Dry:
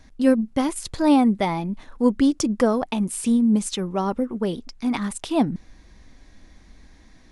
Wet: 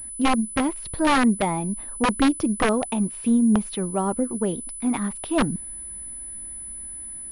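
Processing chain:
wrap-around overflow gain 11.5 dB
high-shelf EQ 3,500 Hz −11 dB
switching amplifier with a slow clock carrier 10,000 Hz

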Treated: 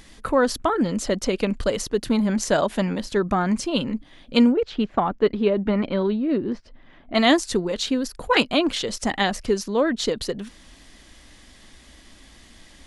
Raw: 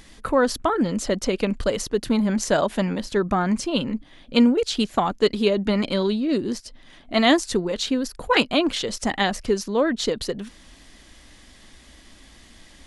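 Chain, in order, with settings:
0:04.52–0:07.15: low-pass filter 2,000 Hz 12 dB per octave

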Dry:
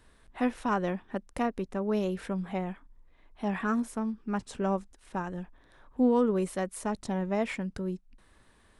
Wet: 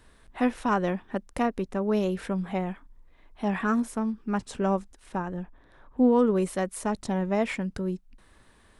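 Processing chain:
0:05.16–0:06.18: high-shelf EQ 2,400 Hz → 4,400 Hz −9.5 dB
level +3.5 dB

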